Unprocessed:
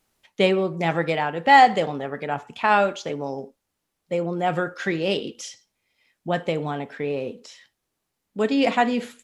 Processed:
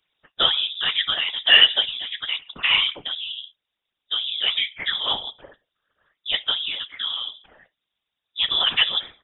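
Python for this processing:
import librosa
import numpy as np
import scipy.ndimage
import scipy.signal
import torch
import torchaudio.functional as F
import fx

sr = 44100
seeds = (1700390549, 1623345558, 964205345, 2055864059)

y = fx.whisperise(x, sr, seeds[0])
y = fx.hpss(y, sr, part='percussive', gain_db=6)
y = fx.freq_invert(y, sr, carrier_hz=3700)
y = y * 10.0 ** (-5.0 / 20.0)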